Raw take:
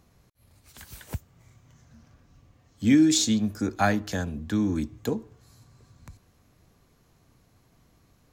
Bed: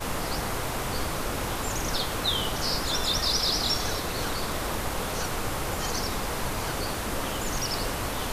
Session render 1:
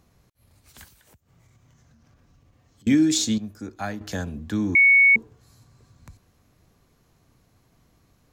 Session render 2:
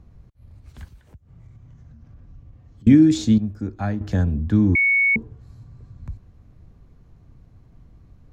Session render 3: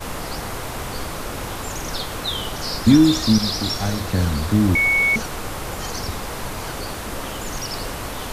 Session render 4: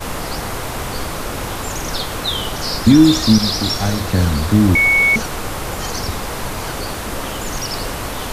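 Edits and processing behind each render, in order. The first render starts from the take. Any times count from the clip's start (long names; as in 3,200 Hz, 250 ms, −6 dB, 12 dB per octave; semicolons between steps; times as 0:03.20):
0:00.88–0:02.87: downward compressor 10 to 1, threshold −53 dBFS; 0:03.38–0:04.01: clip gain −8 dB; 0:04.75–0:05.16: beep over 2,220 Hz −11.5 dBFS
RIAA equalisation playback
mix in bed +1 dB
level +4.5 dB; brickwall limiter −1 dBFS, peak gain reduction 2.5 dB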